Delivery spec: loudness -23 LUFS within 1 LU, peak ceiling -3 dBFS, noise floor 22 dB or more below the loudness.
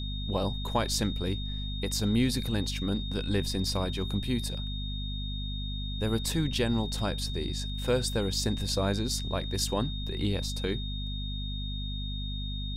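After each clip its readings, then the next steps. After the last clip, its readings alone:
hum 50 Hz; harmonics up to 250 Hz; hum level -32 dBFS; steady tone 3700 Hz; tone level -39 dBFS; loudness -31.0 LUFS; peak -13.5 dBFS; loudness target -23.0 LUFS
-> de-hum 50 Hz, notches 5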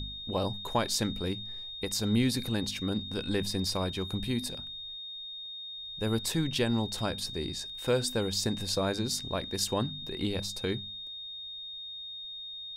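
hum none; steady tone 3700 Hz; tone level -39 dBFS
-> notch 3700 Hz, Q 30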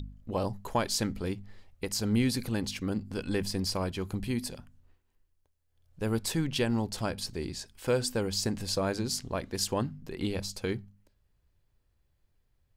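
steady tone none; loudness -32.0 LUFS; peak -14.5 dBFS; loudness target -23.0 LUFS
-> gain +9 dB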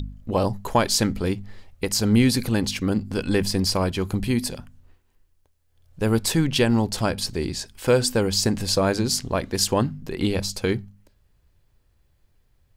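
loudness -23.0 LUFS; peak -5.5 dBFS; noise floor -64 dBFS

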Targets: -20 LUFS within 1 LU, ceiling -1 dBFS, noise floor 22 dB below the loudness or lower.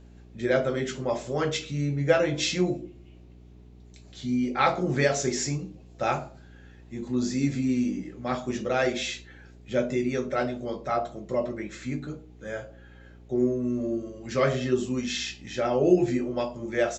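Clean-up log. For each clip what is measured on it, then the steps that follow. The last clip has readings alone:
hum 60 Hz; harmonics up to 420 Hz; hum level -47 dBFS; loudness -27.5 LUFS; peak -8.0 dBFS; loudness target -20.0 LUFS
-> de-hum 60 Hz, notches 7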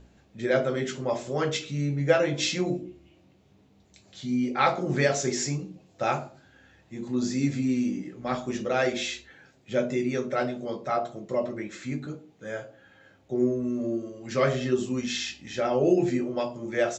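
hum none; loudness -28.0 LUFS; peak -8.0 dBFS; loudness target -20.0 LUFS
-> gain +8 dB; limiter -1 dBFS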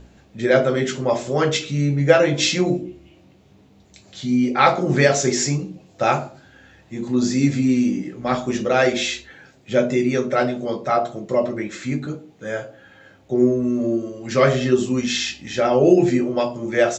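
loudness -20.0 LUFS; peak -1.0 dBFS; noise floor -52 dBFS

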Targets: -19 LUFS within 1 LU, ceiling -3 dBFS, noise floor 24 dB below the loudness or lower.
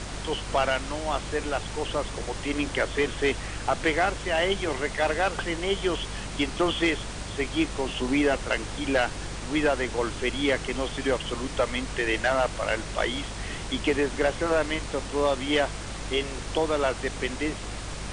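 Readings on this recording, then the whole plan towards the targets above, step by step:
hum 50 Hz; harmonics up to 200 Hz; hum level -36 dBFS; noise floor -36 dBFS; noise floor target -52 dBFS; loudness -27.5 LUFS; peak -13.0 dBFS; loudness target -19.0 LUFS
-> de-hum 50 Hz, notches 4; noise print and reduce 16 dB; gain +8.5 dB

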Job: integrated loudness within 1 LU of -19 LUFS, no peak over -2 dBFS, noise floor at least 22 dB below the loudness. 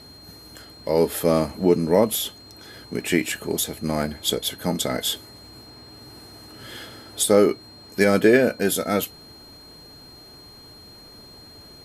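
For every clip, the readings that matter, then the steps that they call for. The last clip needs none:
steady tone 4200 Hz; tone level -45 dBFS; loudness -22.0 LUFS; peak -2.5 dBFS; loudness target -19.0 LUFS
-> notch 4200 Hz, Q 30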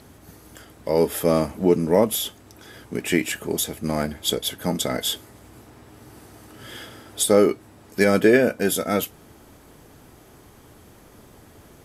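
steady tone none; loudness -22.0 LUFS; peak -2.0 dBFS; loudness target -19.0 LUFS
-> gain +3 dB; limiter -2 dBFS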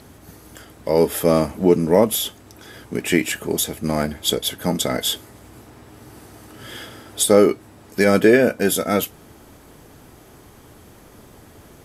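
loudness -19.0 LUFS; peak -2.0 dBFS; noise floor -47 dBFS

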